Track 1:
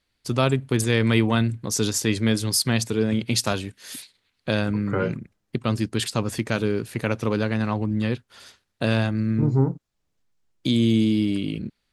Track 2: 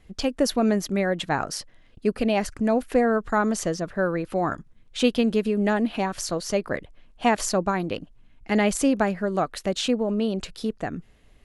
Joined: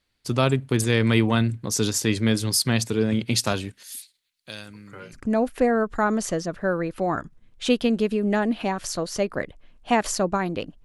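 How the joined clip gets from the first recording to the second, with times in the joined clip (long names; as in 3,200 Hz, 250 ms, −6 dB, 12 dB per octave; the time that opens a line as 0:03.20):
track 1
0:03.83–0:05.23: first-order pre-emphasis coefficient 0.9
0:05.17: continue with track 2 from 0:02.51, crossfade 0.12 s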